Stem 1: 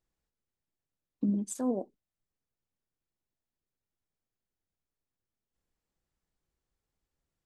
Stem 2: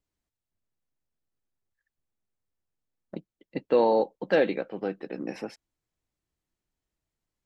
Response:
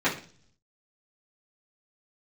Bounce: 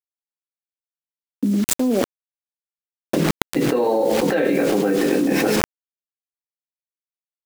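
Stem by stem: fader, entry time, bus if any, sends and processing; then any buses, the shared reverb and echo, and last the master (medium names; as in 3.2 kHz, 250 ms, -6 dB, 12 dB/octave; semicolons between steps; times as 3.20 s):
-3.5 dB, 0.20 s, no send, graphic EQ 125/250/500/8000 Hz -8/+10/+5/-11 dB; auto duck -19 dB, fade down 1.80 s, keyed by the second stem
-8.5 dB, 0.00 s, send -7.5 dB, none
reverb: on, RT60 0.45 s, pre-delay 3 ms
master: word length cut 8-bit, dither none; level flattener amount 100%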